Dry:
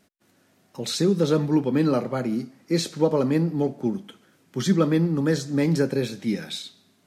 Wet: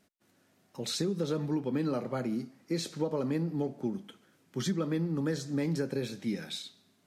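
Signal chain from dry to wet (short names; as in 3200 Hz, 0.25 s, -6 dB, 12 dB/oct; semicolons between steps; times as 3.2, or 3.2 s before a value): compressor, threshold -21 dBFS, peak gain reduction 7 dB; gain -6 dB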